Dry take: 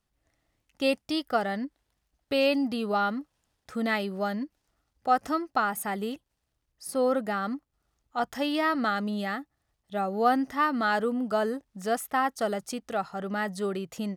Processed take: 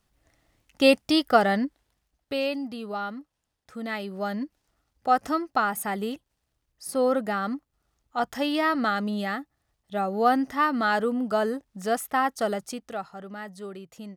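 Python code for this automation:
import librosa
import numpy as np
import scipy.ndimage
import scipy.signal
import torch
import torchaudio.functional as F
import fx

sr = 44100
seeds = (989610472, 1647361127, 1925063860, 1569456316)

y = fx.gain(x, sr, db=fx.line((1.54, 7.5), (2.6, -5.5), (3.83, -5.5), (4.44, 2.0), (12.52, 2.0), (13.35, -8.0)))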